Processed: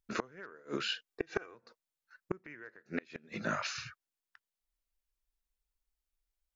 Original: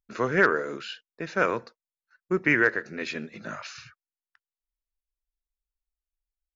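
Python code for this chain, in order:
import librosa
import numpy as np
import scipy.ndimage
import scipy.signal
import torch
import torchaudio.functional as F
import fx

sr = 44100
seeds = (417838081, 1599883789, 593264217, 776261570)

y = fx.gate_flip(x, sr, shuts_db=-21.0, range_db=-31)
y = fx.comb(y, sr, ms=2.6, depth=0.73, at=(1.08, 1.55))
y = y * librosa.db_to_amplitude(2.5)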